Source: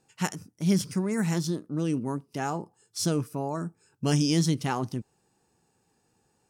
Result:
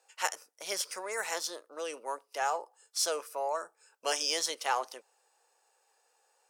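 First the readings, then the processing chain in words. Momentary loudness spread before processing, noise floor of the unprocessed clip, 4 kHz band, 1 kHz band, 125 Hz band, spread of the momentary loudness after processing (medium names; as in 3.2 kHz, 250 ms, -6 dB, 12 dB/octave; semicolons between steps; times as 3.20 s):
11 LU, -72 dBFS, +1.5 dB, +1.5 dB, under -40 dB, 10 LU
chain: Chebyshev high-pass 510 Hz, order 4; in parallel at -8.5 dB: saturation -27.5 dBFS, distortion -13 dB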